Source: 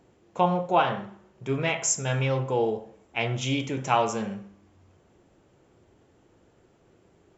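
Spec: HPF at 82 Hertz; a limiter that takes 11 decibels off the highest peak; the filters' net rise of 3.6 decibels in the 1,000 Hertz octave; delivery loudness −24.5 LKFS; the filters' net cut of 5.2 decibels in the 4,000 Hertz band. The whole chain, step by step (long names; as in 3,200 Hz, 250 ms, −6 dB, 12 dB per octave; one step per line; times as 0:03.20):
high-pass filter 82 Hz
parametric band 1,000 Hz +5 dB
parametric band 4,000 Hz −8.5 dB
level +4 dB
brickwall limiter −12 dBFS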